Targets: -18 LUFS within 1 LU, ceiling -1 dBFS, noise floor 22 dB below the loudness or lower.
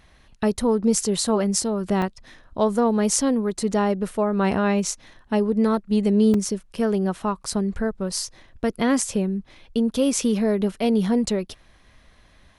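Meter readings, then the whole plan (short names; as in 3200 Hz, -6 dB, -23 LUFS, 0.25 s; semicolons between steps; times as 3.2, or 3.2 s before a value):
dropouts 2; longest dropout 3.1 ms; loudness -22.5 LUFS; peak -3.0 dBFS; loudness target -18.0 LUFS
-> interpolate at 2.02/6.34, 3.1 ms; gain +4.5 dB; limiter -1 dBFS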